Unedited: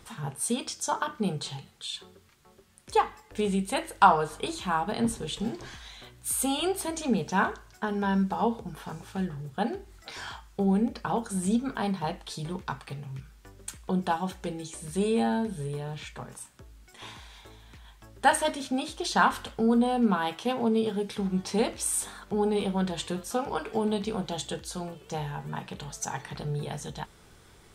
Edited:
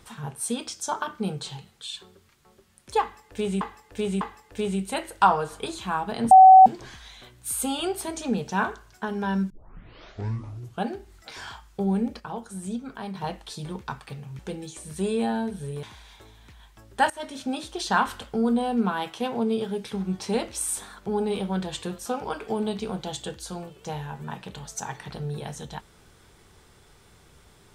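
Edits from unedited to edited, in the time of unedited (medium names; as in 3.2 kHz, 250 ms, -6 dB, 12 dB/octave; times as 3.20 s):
3.01–3.61 s: loop, 3 plays
5.11–5.46 s: bleep 757 Hz -6.5 dBFS
8.30 s: tape start 1.36 s
11.00–11.95 s: gain -6 dB
13.19–14.36 s: delete
15.80–17.08 s: delete
18.35–18.69 s: fade in, from -20.5 dB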